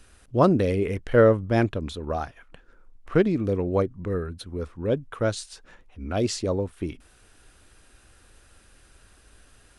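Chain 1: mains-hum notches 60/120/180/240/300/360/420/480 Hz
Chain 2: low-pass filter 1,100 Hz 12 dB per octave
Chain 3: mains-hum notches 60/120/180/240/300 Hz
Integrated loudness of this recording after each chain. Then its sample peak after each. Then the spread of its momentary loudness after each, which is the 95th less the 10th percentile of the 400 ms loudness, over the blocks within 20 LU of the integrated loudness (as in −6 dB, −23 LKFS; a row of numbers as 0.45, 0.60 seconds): −25.5, −25.5, −25.5 LKFS; −6.0, −7.5, −6.0 dBFS; 16, 16, 16 LU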